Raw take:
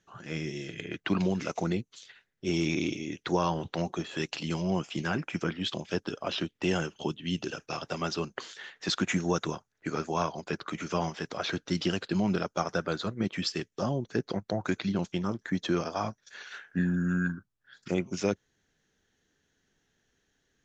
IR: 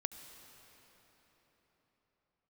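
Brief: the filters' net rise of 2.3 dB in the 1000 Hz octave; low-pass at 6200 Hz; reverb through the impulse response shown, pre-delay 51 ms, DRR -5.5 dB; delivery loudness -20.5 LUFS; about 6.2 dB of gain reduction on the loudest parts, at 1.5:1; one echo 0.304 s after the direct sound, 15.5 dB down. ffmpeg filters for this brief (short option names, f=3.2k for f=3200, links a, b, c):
-filter_complex "[0:a]lowpass=6.2k,equalizer=f=1k:t=o:g=3,acompressor=threshold=-40dB:ratio=1.5,aecho=1:1:304:0.168,asplit=2[a][b];[1:a]atrim=start_sample=2205,adelay=51[c];[b][c]afir=irnorm=-1:irlink=0,volume=6.5dB[d];[a][d]amix=inputs=2:normalize=0,volume=9.5dB"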